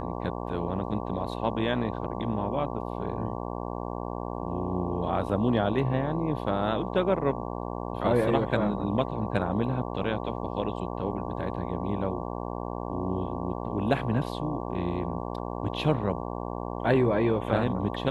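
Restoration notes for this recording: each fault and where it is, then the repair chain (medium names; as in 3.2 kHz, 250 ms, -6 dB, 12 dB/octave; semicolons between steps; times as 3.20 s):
buzz 60 Hz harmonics 19 -34 dBFS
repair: de-hum 60 Hz, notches 19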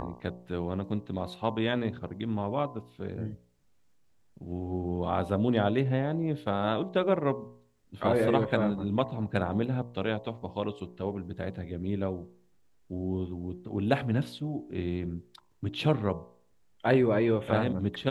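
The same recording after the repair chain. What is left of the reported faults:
nothing left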